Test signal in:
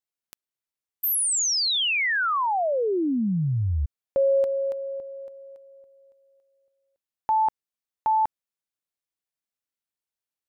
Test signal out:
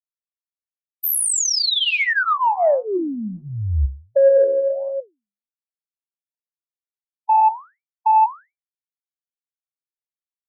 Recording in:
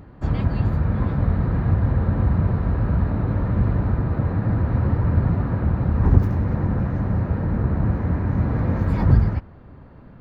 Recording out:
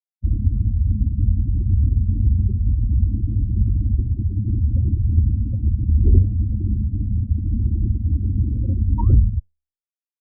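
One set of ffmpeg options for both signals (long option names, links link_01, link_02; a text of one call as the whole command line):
ffmpeg -i in.wav -filter_complex "[0:a]afftfilt=real='re*gte(hypot(re,im),0.224)':imag='im*gte(hypot(re,im),0.224)':win_size=1024:overlap=0.75,anlmdn=0.158,equalizer=frequency=270:width_type=o:width=0.6:gain=-8.5,aecho=1:1:3.2:0.96,adynamicequalizer=threshold=0.0141:dfrequency=350:dqfactor=1.4:tfrequency=350:tqfactor=1.4:attack=5:release=100:ratio=0.438:range=2.5:mode=cutabove:tftype=bell,acrossover=split=320|720[link_01][link_02][link_03];[link_02]acontrast=60[link_04];[link_01][link_04][link_03]amix=inputs=3:normalize=0,flanger=delay=5.5:depth=9.5:regen=79:speed=1.4:shape=sinusoidal,asoftclip=type=tanh:threshold=-8.5dB,volume=6dB" out.wav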